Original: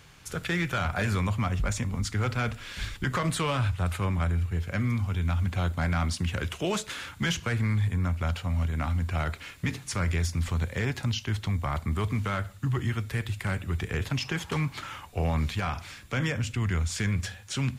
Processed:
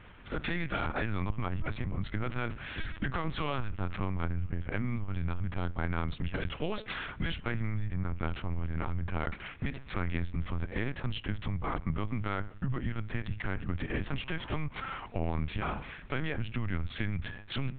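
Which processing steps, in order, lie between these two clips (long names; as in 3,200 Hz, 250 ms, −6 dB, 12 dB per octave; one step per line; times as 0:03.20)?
adaptive Wiener filter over 9 samples
downward compressor 5 to 1, threshold −32 dBFS, peak gain reduction 8.5 dB
linear-prediction vocoder at 8 kHz pitch kept
level +2.5 dB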